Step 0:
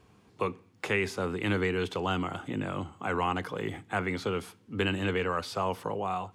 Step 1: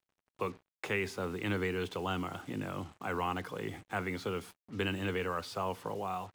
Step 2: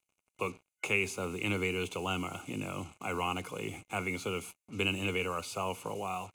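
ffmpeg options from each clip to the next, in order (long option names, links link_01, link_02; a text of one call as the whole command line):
ffmpeg -i in.wav -af "acrusher=bits=7:mix=0:aa=0.5,volume=-5dB" out.wav
ffmpeg -i in.wav -af "superequalizer=11b=0.316:12b=2.51:15b=2.82:16b=2.82" out.wav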